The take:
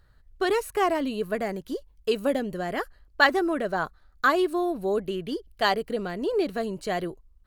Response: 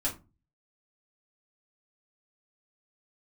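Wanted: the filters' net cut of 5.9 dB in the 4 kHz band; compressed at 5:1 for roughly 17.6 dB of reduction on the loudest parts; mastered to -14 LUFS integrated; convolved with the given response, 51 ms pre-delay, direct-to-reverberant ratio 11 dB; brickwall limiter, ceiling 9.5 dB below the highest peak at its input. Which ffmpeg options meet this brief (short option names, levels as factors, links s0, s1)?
-filter_complex "[0:a]equalizer=f=4000:t=o:g=-8,acompressor=threshold=0.0178:ratio=5,alimiter=level_in=2:limit=0.0631:level=0:latency=1,volume=0.501,asplit=2[s0][s1];[1:a]atrim=start_sample=2205,adelay=51[s2];[s1][s2]afir=irnorm=-1:irlink=0,volume=0.158[s3];[s0][s3]amix=inputs=2:normalize=0,volume=18.8"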